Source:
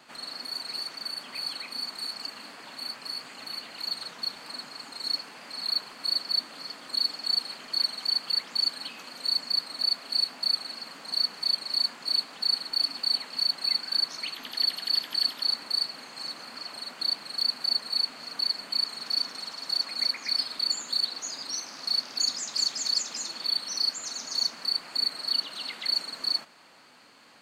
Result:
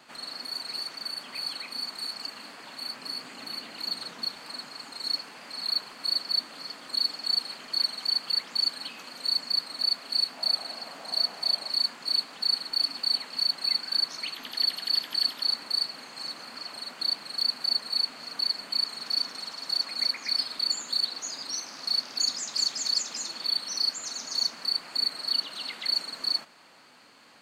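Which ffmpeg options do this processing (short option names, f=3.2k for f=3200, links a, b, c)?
-filter_complex "[0:a]asettb=1/sr,asplit=3[a][b][c];[a]atrim=end=2.934[d];[b]atrim=start=2.93:end=4.27,asetpts=PTS-STARTPTS,afade=t=in:d=0.004:c=qsin,afade=t=out:st=1.336:d=0.004:c=qsin,equalizer=f=250:w=0.92:g=5.5[e];[c]atrim=start=4.266[f];[d][e]acrossfade=d=0.004:c1=hsin:c2=qsin[g];[g][f]acrossfade=d=0.004:c1=qsin:c2=hsin,asettb=1/sr,asplit=3[h][i][j];[h]atrim=end=10.374[k];[i]atrim=start=10.37:end=11.7,asetpts=PTS-STARTPTS,afade=t=in:d=0.004:c=qsin,afade=t=out:st=1.326:d=0.004:c=qsin,equalizer=f=680:w=2:g=9[l];[j]atrim=start=11.696[m];[k][l]acrossfade=d=0.004:c1=hsin:c2=qsin[n];[n][m]acrossfade=d=0.004:c1=qsin:c2=hsin"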